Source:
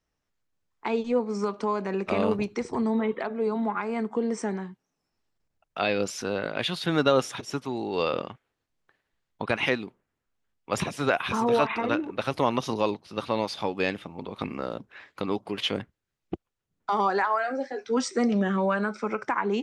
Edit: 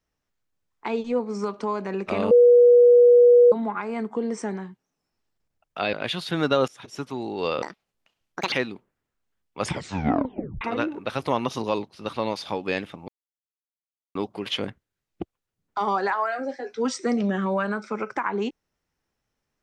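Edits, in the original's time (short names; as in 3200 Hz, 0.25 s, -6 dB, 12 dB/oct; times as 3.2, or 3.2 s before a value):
2.31–3.52 bleep 484 Hz -10 dBFS
5.93–6.48 cut
7.23–7.63 fade in, from -20 dB
8.17–9.64 speed 163%
10.73 tape stop 1.00 s
14.2–15.27 mute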